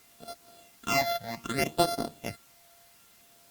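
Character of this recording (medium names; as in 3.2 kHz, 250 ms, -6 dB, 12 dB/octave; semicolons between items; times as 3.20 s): a buzz of ramps at a fixed pitch in blocks of 64 samples; phasing stages 8, 0.64 Hz, lowest notch 330–2500 Hz; a quantiser's noise floor 10-bit, dither triangular; Opus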